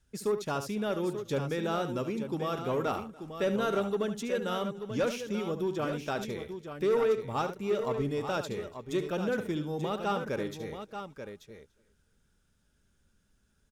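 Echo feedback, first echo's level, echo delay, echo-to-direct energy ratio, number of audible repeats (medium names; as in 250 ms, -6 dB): no regular repeats, -10.5 dB, 72 ms, -6.5 dB, 6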